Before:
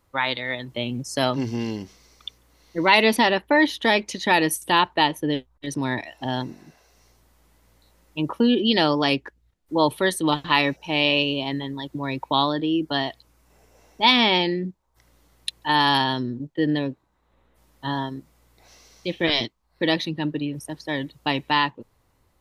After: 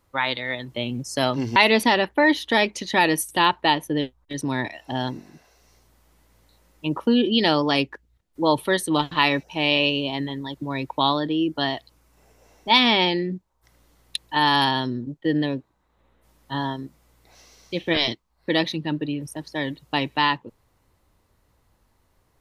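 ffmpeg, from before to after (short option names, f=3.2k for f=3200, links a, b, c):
-filter_complex "[0:a]asplit=2[a][b];[a]atrim=end=1.562[c];[b]atrim=start=2.888[d];[c][d]acrossfade=d=0.004:c1=hsin:c2=hsin"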